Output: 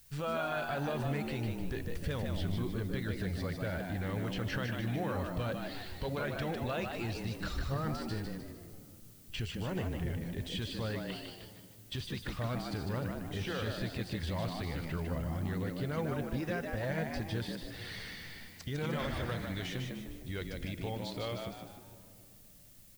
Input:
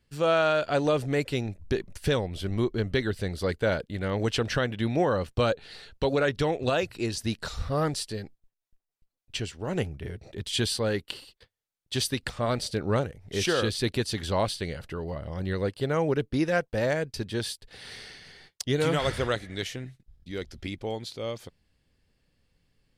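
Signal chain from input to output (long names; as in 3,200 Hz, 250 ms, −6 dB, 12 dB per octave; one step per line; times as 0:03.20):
spectral magnitudes quantised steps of 15 dB
de-essing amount 95%
low-pass filter 1,600 Hz 6 dB per octave
parametric band 390 Hz −11.5 dB 2.7 octaves
in parallel at +0.5 dB: downward compressor, threshold −41 dBFS, peak gain reduction 13 dB
on the sum: brickwall limiter −28 dBFS, peak gain reduction 9.5 dB
background noise blue −61 dBFS
echo with shifted repeats 152 ms, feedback 41%, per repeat +83 Hz, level −5 dB
on a send at −15.5 dB: convolution reverb RT60 3.3 s, pre-delay 6 ms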